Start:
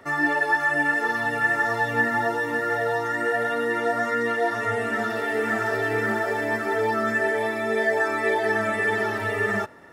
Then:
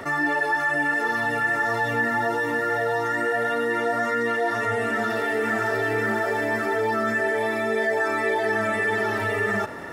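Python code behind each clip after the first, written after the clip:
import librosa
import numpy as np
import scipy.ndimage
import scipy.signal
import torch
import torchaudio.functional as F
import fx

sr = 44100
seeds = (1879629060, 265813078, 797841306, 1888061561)

y = fx.env_flatten(x, sr, amount_pct=50)
y = y * 10.0 ** (-3.0 / 20.0)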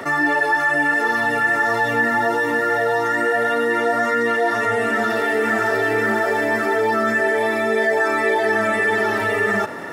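y = scipy.signal.sosfilt(scipy.signal.butter(2, 140.0, 'highpass', fs=sr, output='sos'), x)
y = y * 10.0 ** (5.0 / 20.0)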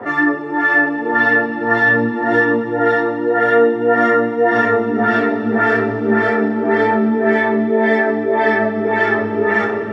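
y = fx.echo_split(x, sr, split_hz=910.0, low_ms=315, high_ms=117, feedback_pct=52, wet_db=-6.5)
y = fx.filter_lfo_lowpass(y, sr, shape='sine', hz=1.8, low_hz=250.0, high_hz=3600.0, q=1.0)
y = fx.rev_double_slope(y, sr, seeds[0], early_s=0.22, late_s=4.2, knee_db=-21, drr_db=-7.0)
y = y * 10.0 ** (-4.5 / 20.0)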